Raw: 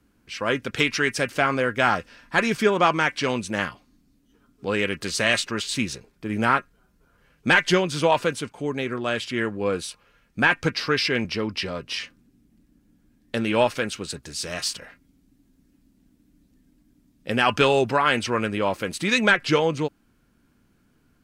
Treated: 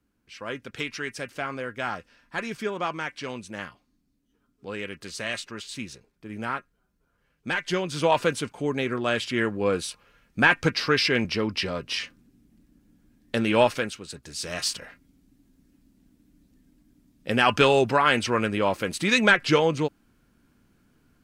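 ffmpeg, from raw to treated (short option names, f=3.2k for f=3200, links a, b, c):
-af "volume=9dB,afade=t=in:st=7.62:d=0.7:silence=0.298538,afade=t=out:st=13.71:d=0.3:silence=0.354813,afade=t=in:st=14.01:d=0.67:silence=0.375837"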